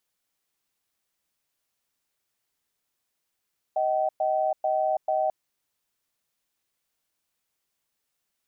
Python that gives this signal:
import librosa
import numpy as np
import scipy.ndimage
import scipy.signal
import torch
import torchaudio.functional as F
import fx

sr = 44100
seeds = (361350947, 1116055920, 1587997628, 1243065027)

y = fx.cadence(sr, length_s=1.54, low_hz=627.0, high_hz=765.0, on_s=0.33, off_s=0.11, level_db=-24.5)